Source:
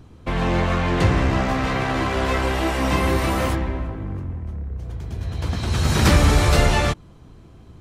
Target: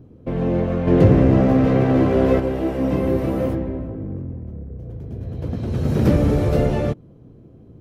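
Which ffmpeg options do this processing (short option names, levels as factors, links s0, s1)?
-filter_complex "[0:a]asettb=1/sr,asplit=3[s0][s1][s2];[s0]atrim=end=0.874[s3];[s1]atrim=start=0.87:end=2.4,asetpts=PTS-STARTPTS,afade=t=in:d=0.004:c=qsin,afade=t=out:st=1.526:d=0.004:c=qsin,acontrast=54[s4];[s2]atrim=start=2.396[s5];[s3][s4]acrossfade=d=0.004:c1=hsin:c2=qsin[s6];[s6][s5]acrossfade=d=0.004:c1=qsin:c2=hsin,equalizer=f=125:t=o:w=1:g=9,equalizer=f=250:t=o:w=1:g=9,equalizer=f=500:t=o:w=1:g=12,equalizer=f=1000:t=o:w=1:g=-5,equalizer=f=2000:t=o:w=1:g=-3,equalizer=f=4000:t=o:w=1:g=-6,equalizer=f=8000:t=o:w=1:g=-10,volume=0.376"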